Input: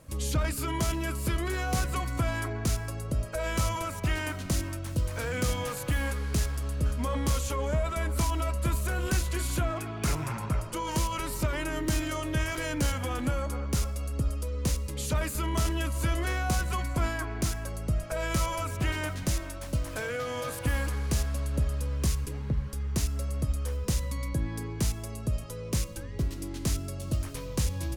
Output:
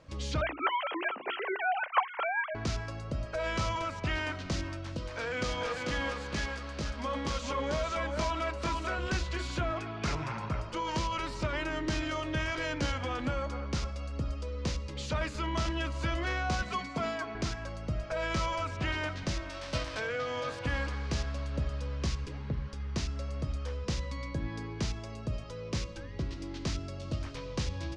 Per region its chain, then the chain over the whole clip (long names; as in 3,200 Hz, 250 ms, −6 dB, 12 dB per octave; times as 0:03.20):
0:00.41–0:02.55: three sine waves on the formant tracks + high-pass filter 390 Hz 6 dB per octave + dynamic equaliser 1,600 Hz, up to −4 dB, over −37 dBFS, Q 1.7
0:04.97–0:08.98: parametric band 85 Hz −8.5 dB 1.8 octaves + single-tap delay 443 ms −3.5 dB
0:16.62–0:17.35: high-pass filter 95 Hz 24 dB per octave + comb filter 4.5 ms, depth 63% + dynamic equaliser 1,600 Hz, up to −4 dB, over −43 dBFS, Q 1.1
0:19.49–0:19.99: spectral envelope flattened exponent 0.6 + notch filter 6,900 Hz, Q 21
whole clip: low-pass filter 5,400 Hz 24 dB per octave; low-shelf EQ 280 Hz −5 dB; mains-hum notches 60/120/180/240/300/360/420 Hz